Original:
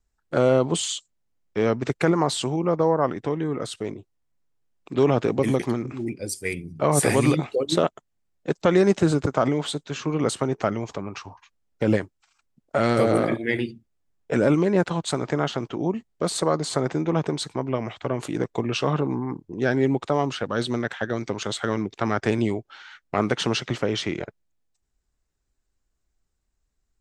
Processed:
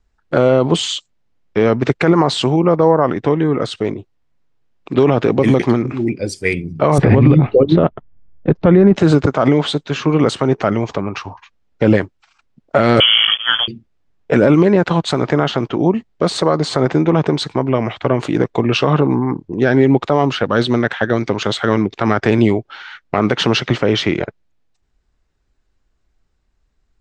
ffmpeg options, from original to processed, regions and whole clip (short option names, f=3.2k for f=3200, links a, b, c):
-filter_complex "[0:a]asettb=1/sr,asplit=3[a][b][c];[a]atrim=end=6.984[d];[b]atrim=start=6.98:end=8.96,asetpts=PTS-STARTPTS,afade=t=in:d=0.004:c=qsin,afade=t=out:st=1.976:d=0.004:c=qsin,lowpass=3.7k,aemphasis=mode=reproduction:type=riaa[e];[c]atrim=start=8.956[f];[d][e]acrossfade=d=0.004:c1=hsin:c2=qsin[g];[g][f]acrossfade=d=0.004:c1=qsin:c2=hsin,asettb=1/sr,asplit=3[h][i][j];[h]atrim=end=13.004[k];[i]atrim=start=13:end=13.68,asetpts=PTS-STARTPTS,afade=t=in:d=0.004:c=qsin,afade=t=out:st=0.676:d=0.004:c=qsin,aeval=exprs='sgn(val(0))*max(abs(val(0))-0.0168,0)':c=same,lowpass=f=3k:t=q:w=0.5098,lowpass=f=3k:t=q:w=0.6013,lowpass=f=3k:t=q:w=0.9,lowpass=f=3k:t=q:w=2.563,afreqshift=-3500[l];[j]atrim=start=13.676[m];[k][l]acrossfade=d=0.004:c1=hsin:c2=qsin[n];[n][m]acrossfade=d=0.004:c1=qsin:c2=hsin,lowpass=4.3k,alimiter=level_in=12dB:limit=-1dB:release=50:level=0:latency=1,volume=-1dB"